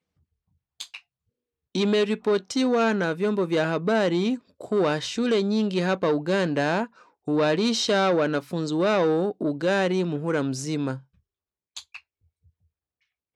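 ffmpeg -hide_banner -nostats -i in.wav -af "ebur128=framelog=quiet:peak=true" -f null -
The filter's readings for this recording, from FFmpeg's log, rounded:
Integrated loudness:
  I:         -24.2 LUFS
  Threshold: -35.0 LUFS
Loudness range:
  LRA:         4.7 LU
  Threshold: -44.8 LUFS
  LRA low:   -28.3 LUFS
  LRA high:  -23.6 LUFS
True peak:
  Peak:      -11.6 dBFS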